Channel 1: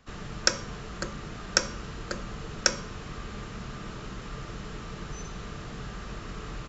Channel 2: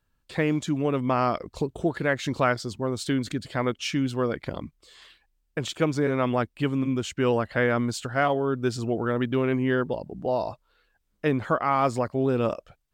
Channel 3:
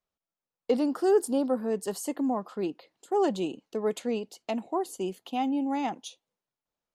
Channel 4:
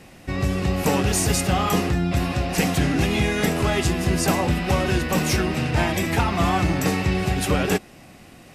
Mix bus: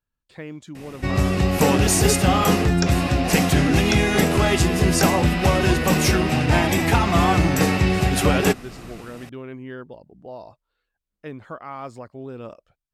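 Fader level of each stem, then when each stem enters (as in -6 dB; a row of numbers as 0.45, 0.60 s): -5.0, -11.5, -3.0, +3.0 dB; 2.35, 0.00, 0.95, 0.75 s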